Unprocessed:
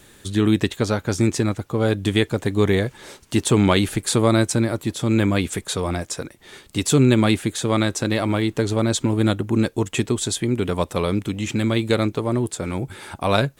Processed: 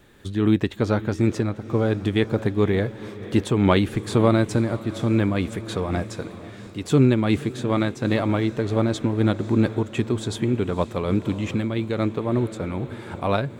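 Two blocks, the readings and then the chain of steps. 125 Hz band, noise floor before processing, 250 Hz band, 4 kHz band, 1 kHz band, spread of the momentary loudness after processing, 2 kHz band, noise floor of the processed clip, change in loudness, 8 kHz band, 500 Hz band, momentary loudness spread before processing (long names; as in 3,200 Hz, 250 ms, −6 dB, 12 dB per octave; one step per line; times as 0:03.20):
−1.5 dB, −51 dBFS, −1.5 dB, −7.5 dB, −2.0 dB, 10 LU, −4.0 dB, −39 dBFS, −2.0 dB, −14.0 dB, −1.5 dB, 8 LU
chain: parametric band 9,500 Hz −14 dB 2.1 octaves
feedback delay with all-pass diffusion 530 ms, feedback 63%, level −15.5 dB
amplitude modulation by smooth noise, depth 65%
level +1.5 dB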